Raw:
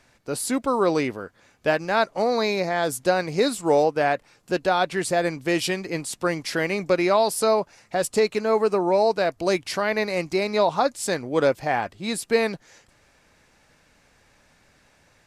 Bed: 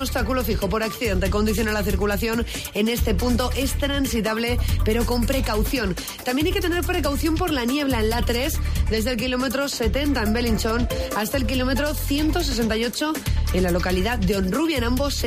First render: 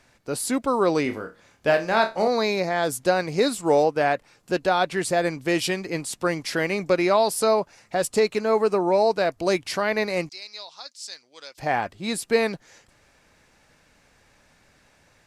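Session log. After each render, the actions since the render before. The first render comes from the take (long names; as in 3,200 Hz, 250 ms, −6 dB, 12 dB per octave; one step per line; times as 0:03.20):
0:01.03–0:02.28: flutter between parallel walls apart 4.7 metres, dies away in 0.24 s
0:10.29–0:11.58: resonant band-pass 4,900 Hz, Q 2.6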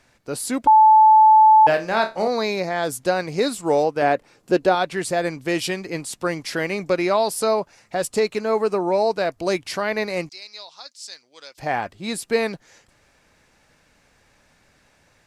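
0:00.67–0:01.67: beep over 870 Hz −8 dBFS
0:04.02–0:04.75: parametric band 360 Hz +7 dB 1.9 octaves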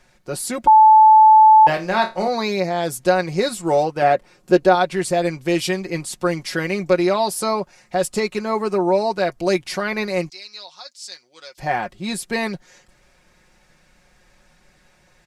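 low-shelf EQ 69 Hz +8 dB
comb filter 5.5 ms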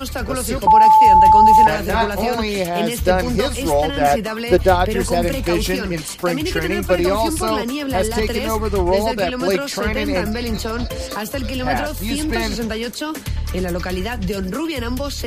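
mix in bed −1.5 dB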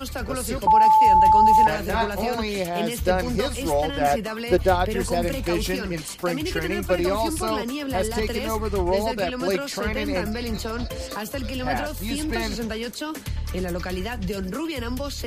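level −5.5 dB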